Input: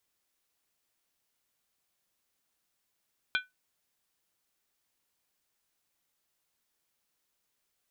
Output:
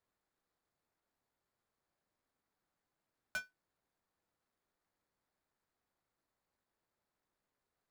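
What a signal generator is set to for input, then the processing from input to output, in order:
skin hit, lowest mode 1500 Hz, decay 0.18 s, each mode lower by 3 dB, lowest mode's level -23.5 dB
median filter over 15 samples; overloaded stage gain 34.5 dB

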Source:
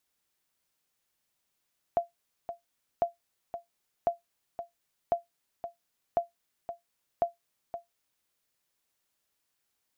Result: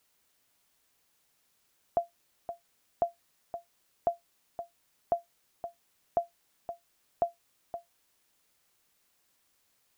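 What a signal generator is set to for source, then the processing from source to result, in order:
sonar ping 687 Hz, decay 0.15 s, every 1.05 s, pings 6, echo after 0.52 s, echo -11 dB -17 dBFS
LPF 1500 Hz 12 dB/oct; requantised 12-bit, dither triangular

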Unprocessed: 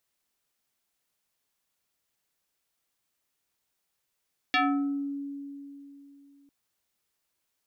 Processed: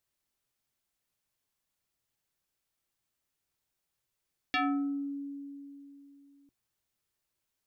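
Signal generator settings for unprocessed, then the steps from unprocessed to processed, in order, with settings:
FM tone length 1.95 s, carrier 281 Hz, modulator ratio 3.62, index 3.5, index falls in 0.64 s exponential, decay 3.16 s, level -20 dB
low shelf 170 Hz +8.5 dB; resonator 120 Hz, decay 0.21 s, harmonics odd, mix 50%

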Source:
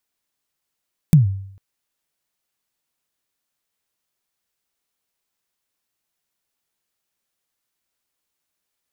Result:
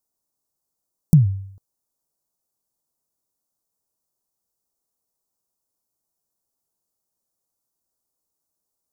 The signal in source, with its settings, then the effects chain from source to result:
kick drum length 0.45 s, from 170 Hz, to 97 Hz, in 0.135 s, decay 0.67 s, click on, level -4.5 dB
Butterworth band-stop 2400 Hz, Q 0.52

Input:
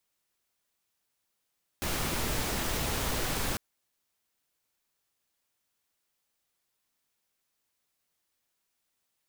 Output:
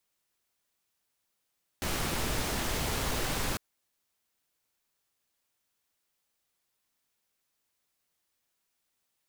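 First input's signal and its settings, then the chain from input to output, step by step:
noise pink, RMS -31 dBFS 1.75 s
Doppler distortion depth 0.31 ms

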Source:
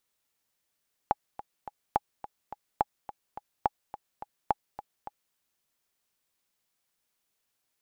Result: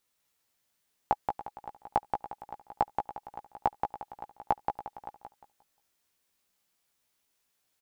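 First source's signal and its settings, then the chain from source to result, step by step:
metronome 212 bpm, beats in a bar 3, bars 5, 831 Hz, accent 15.5 dB -10 dBFS
doubler 16 ms -5 dB; feedback echo 0.177 s, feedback 29%, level -4.5 dB

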